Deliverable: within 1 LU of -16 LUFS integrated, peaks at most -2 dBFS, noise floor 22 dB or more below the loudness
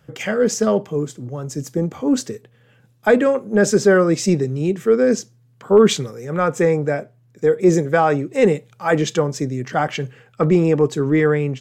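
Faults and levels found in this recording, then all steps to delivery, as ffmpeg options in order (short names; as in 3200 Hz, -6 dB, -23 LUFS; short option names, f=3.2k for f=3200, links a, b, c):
loudness -18.5 LUFS; peak -2.5 dBFS; loudness target -16.0 LUFS
-> -af "volume=2.5dB,alimiter=limit=-2dB:level=0:latency=1"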